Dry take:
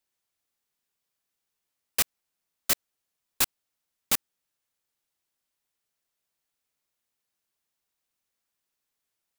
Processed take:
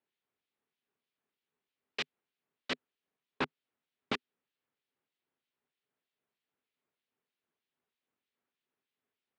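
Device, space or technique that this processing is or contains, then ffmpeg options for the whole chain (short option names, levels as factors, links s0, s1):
guitar amplifier with harmonic tremolo: -filter_complex "[0:a]acrossover=split=2100[s0][s1];[s0]aeval=exprs='val(0)*(1-0.7/2+0.7/2*cos(2*PI*3.2*n/s))':c=same[s2];[s1]aeval=exprs='val(0)*(1-0.7/2-0.7/2*cos(2*PI*3.2*n/s))':c=same[s3];[s2][s3]amix=inputs=2:normalize=0,asoftclip=type=tanh:threshold=0.178,highpass=100,equalizer=f=150:t=q:w=4:g=3,equalizer=f=250:t=q:w=4:g=7,equalizer=f=410:t=q:w=4:g=8,lowpass=f=3600:w=0.5412,lowpass=f=3600:w=1.3066,volume=1.12"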